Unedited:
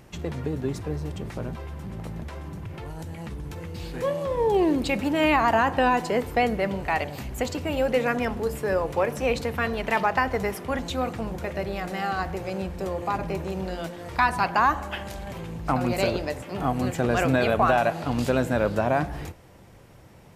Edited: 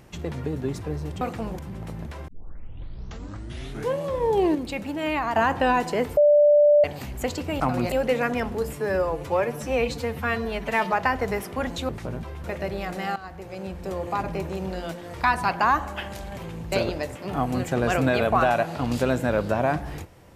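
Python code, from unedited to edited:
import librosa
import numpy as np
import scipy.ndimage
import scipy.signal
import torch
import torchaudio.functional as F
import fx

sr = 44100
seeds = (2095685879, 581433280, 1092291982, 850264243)

y = fx.edit(x, sr, fx.swap(start_s=1.21, length_s=0.55, other_s=11.01, other_length_s=0.38),
    fx.tape_start(start_s=2.45, length_s=1.73),
    fx.clip_gain(start_s=4.72, length_s=0.81, db=-5.5),
    fx.bleep(start_s=6.34, length_s=0.67, hz=589.0, db=-12.5),
    fx.stretch_span(start_s=8.58, length_s=1.46, factor=1.5),
    fx.fade_in_from(start_s=12.11, length_s=0.87, floor_db=-14.5),
    fx.move(start_s=15.67, length_s=0.32, to_s=7.77), tone=tone)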